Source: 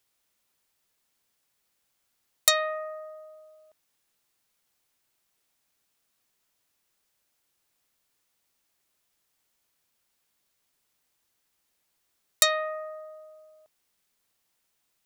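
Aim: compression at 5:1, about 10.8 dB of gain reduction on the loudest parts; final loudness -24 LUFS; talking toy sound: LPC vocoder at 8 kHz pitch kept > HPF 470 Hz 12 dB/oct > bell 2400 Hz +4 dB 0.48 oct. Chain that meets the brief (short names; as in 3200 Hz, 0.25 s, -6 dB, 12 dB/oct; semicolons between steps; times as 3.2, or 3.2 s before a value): compressor 5:1, threshold -28 dBFS; LPC vocoder at 8 kHz pitch kept; HPF 470 Hz 12 dB/oct; bell 2400 Hz +4 dB 0.48 oct; gain +15.5 dB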